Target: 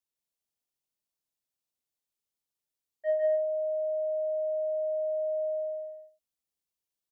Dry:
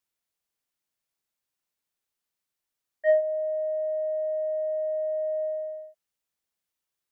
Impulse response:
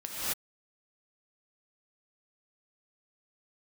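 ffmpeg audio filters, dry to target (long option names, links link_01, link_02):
-af "equalizer=frequency=1600:width=1.1:gain=-8,aecho=1:1:154.5|247.8:0.794|0.282,volume=-6dB"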